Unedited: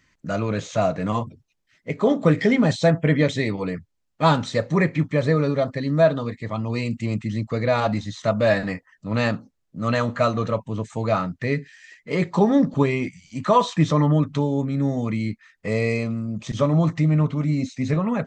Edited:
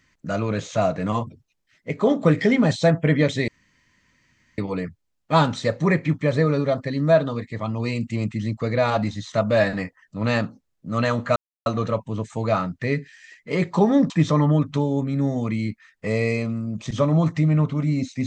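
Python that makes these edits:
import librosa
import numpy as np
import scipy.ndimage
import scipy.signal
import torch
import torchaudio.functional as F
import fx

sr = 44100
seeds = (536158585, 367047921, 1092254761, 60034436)

y = fx.edit(x, sr, fx.insert_room_tone(at_s=3.48, length_s=1.1),
    fx.insert_silence(at_s=10.26, length_s=0.3),
    fx.cut(start_s=12.7, length_s=1.01), tone=tone)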